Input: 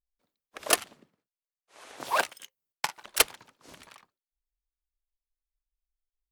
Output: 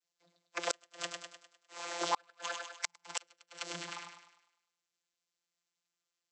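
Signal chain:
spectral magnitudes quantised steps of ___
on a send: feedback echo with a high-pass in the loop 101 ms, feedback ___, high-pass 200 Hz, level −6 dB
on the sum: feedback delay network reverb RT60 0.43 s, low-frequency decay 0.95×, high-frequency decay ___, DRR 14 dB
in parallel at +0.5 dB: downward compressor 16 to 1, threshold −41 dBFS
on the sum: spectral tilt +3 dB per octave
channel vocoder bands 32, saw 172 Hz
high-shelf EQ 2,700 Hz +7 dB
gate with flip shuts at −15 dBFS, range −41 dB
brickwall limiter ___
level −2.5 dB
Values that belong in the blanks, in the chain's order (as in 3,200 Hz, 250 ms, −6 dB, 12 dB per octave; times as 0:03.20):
15 dB, 47%, 0.65×, −16 dBFS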